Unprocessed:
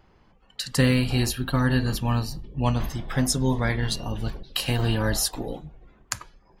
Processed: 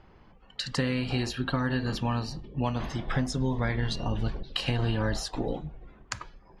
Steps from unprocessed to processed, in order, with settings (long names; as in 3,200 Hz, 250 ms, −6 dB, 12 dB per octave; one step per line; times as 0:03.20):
0:00.74–0:03.08: low-shelf EQ 110 Hz −10.5 dB
downward compressor, threshold −27 dBFS, peak gain reduction 10 dB
high-frequency loss of the air 110 metres
level +3 dB